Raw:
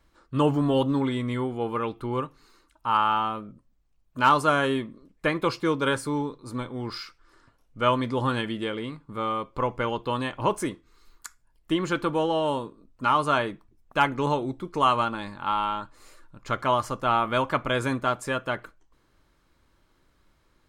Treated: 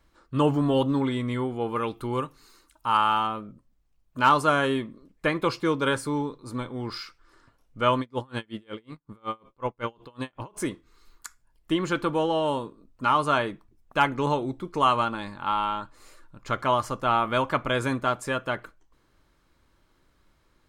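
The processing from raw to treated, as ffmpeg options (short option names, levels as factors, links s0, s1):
-filter_complex "[0:a]asettb=1/sr,asplit=3[s0][s1][s2];[s0]atrim=end=1.764[s3];[s1]atrim=start=1.76:end=3.27,asetpts=PTS-STARTPTS,afade=t=in:d=0.004:c=qsin,afade=t=out:st=1.506:d=0.004:c=qsin,highshelf=f=5300:g=11[s4];[s2]atrim=start=3.266[s5];[s3][s4]acrossfade=d=0.004:c1=hsin:c2=qsin[s6];[s6][s5]acrossfade=d=0.004:c1=qsin:c2=hsin,asettb=1/sr,asplit=3[s7][s8][s9];[s7]atrim=end=8.004[s10];[s8]atrim=start=8:end=10.57,asetpts=PTS-STARTPTS,afade=t=in:d=0.004:c=qsin,afade=t=out:st=2.566:d=0.004:c=qsin,aeval=exprs='val(0)*pow(10,-34*(0.5-0.5*cos(2*PI*5.4*n/s))/20)':c=same[s11];[s9]atrim=start=10.566[s12];[s10][s11]acrossfade=d=0.004:c1=hsin:c2=qsin[s13];[s13][s12]acrossfade=d=0.004:c1=qsin:c2=hsin"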